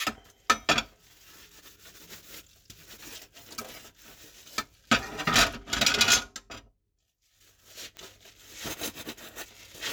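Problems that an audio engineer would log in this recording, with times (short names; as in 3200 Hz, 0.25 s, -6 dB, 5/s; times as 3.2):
7.97 pop -27 dBFS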